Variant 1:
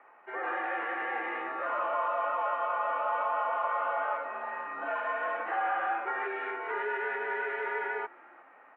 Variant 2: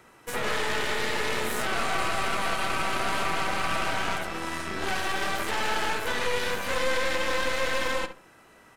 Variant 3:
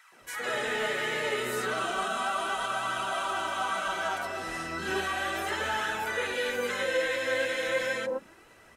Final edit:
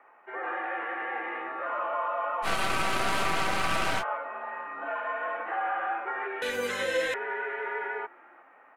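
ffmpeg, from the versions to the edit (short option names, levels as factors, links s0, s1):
-filter_complex "[0:a]asplit=3[s0][s1][s2];[s0]atrim=end=2.48[s3];[1:a]atrim=start=2.42:end=4.04[s4];[s1]atrim=start=3.98:end=6.422[s5];[2:a]atrim=start=6.418:end=7.142[s6];[s2]atrim=start=7.138[s7];[s3][s4]acrossfade=d=0.06:c1=tri:c2=tri[s8];[s8][s5]acrossfade=d=0.06:c1=tri:c2=tri[s9];[s9][s6]acrossfade=d=0.004:c1=hsin:c2=hsin[s10];[s10][s7]acrossfade=d=0.004:c1=hsin:c2=hsin"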